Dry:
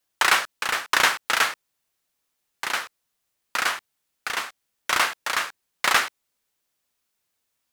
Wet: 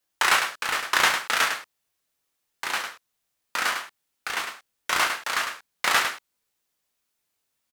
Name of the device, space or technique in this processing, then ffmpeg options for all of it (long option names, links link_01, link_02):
slapback doubling: -filter_complex "[0:a]asplit=3[link_01][link_02][link_03];[link_02]adelay=22,volume=-6dB[link_04];[link_03]adelay=103,volume=-7dB[link_05];[link_01][link_04][link_05]amix=inputs=3:normalize=0,volume=-2.5dB"